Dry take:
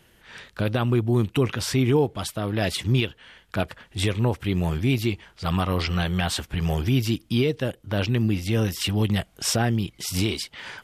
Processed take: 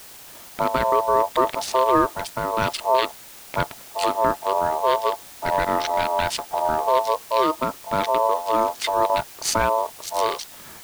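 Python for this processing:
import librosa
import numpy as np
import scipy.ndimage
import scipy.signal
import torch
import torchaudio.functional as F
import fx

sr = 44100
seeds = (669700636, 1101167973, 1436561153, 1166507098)

y = fx.wiener(x, sr, points=25)
y = y * np.sin(2.0 * np.pi * 780.0 * np.arange(len(y)) / sr)
y = fx.quant_dither(y, sr, seeds[0], bits=8, dither='triangular')
y = y * 10.0 ** (5.0 / 20.0)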